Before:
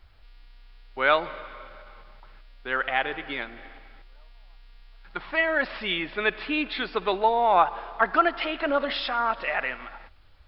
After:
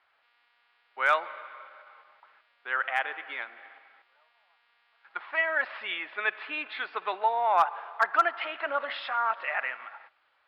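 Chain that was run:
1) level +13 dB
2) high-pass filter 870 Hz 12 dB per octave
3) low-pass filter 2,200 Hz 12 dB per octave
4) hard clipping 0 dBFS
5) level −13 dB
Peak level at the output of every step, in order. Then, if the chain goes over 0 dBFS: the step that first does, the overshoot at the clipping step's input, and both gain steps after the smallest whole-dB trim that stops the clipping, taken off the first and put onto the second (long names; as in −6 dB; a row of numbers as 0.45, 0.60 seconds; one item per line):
+6.0, +4.0, +3.5, 0.0, −13.0 dBFS
step 1, 3.5 dB
step 1 +9 dB, step 5 −9 dB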